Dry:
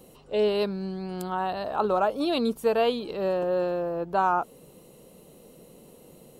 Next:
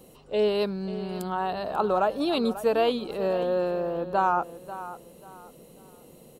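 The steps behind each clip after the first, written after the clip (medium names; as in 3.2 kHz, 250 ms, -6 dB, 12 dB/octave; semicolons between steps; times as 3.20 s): feedback delay 540 ms, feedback 29%, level -14 dB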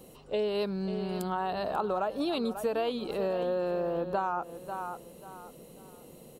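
compression 6:1, threshold -27 dBFS, peak gain reduction 8.5 dB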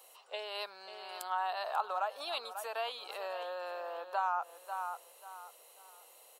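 high-pass 740 Hz 24 dB/octave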